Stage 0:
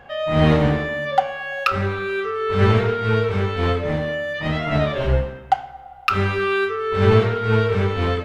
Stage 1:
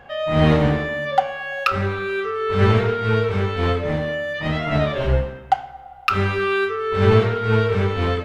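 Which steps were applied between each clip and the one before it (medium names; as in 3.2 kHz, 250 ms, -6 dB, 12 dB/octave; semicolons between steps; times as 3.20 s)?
no audible change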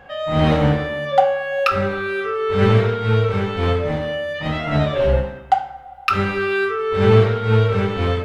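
reverberation RT60 0.50 s, pre-delay 3 ms, DRR 5.5 dB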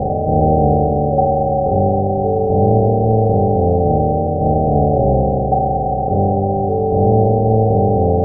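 spectral levelling over time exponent 0.2; Chebyshev low-pass 770 Hz, order 6; trim -3 dB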